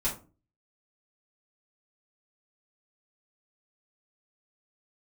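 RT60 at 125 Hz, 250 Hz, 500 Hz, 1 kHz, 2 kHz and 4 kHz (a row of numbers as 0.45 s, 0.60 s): 0.50 s, 0.50 s, 0.40 s, 0.30 s, 0.25 s, 0.20 s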